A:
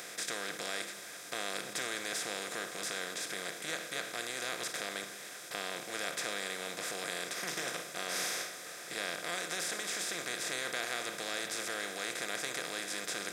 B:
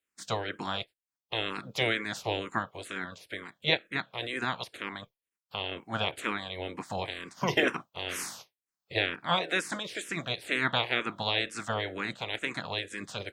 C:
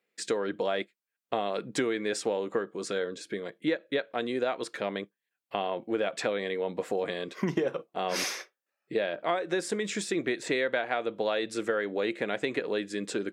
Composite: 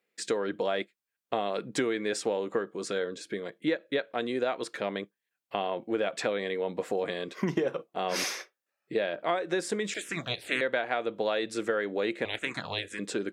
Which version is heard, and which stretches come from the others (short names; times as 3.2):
C
9.94–10.61 from B
12.25–12.99 from B
not used: A